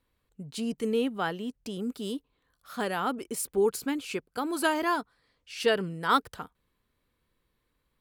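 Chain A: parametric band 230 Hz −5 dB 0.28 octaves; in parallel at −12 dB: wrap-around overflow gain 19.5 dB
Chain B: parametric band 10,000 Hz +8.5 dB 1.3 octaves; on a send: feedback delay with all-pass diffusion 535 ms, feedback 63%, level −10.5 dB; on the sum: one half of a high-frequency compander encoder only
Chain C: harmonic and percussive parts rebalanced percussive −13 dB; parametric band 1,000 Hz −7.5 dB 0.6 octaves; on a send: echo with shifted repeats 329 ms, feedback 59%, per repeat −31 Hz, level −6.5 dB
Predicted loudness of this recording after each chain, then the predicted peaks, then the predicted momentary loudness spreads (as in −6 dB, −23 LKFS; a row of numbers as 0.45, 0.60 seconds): −29.0, −29.5, −32.5 LKFS; −9.5, −9.5, −15.0 dBFS; 16, 14, 15 LU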